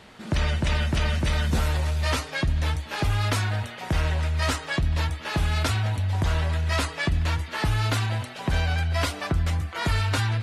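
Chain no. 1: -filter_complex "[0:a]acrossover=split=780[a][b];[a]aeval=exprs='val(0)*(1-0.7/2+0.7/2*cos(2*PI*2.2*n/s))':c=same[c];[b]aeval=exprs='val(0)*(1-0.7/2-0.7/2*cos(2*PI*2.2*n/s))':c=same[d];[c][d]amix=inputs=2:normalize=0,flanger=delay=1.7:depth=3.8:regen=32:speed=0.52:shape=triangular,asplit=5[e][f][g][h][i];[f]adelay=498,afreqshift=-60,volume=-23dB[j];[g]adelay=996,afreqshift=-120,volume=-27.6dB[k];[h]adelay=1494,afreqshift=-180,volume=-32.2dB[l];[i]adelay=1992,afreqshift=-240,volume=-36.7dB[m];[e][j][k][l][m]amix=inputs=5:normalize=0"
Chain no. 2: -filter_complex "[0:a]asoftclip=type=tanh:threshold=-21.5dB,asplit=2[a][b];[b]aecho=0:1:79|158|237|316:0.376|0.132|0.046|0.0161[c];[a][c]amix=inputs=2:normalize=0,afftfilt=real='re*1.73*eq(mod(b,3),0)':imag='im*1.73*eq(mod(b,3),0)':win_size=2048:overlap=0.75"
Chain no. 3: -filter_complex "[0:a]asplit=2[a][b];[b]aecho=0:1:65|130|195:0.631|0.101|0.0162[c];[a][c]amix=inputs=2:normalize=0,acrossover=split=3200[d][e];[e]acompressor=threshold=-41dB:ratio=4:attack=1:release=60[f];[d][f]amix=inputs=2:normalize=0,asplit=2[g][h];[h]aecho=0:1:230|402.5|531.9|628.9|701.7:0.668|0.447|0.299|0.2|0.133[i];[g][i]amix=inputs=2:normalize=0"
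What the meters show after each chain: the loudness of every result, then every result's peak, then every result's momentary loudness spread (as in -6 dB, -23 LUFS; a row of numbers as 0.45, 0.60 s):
-33.5, -31.0, -22.0 LUFS; -17.0, -17.5, -8.0 dBFS; 5, 7, 4 LU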